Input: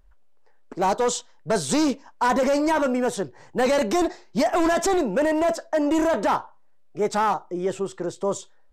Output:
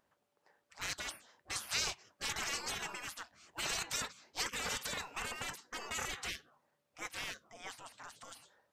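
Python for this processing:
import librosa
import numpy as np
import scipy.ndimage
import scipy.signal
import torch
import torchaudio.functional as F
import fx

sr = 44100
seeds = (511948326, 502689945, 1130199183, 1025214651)

y = fx.spec_gate(x, sr, threshold_db=-25, keep='weak')
y = y * 10.0 ** (-1.5 / 20.0)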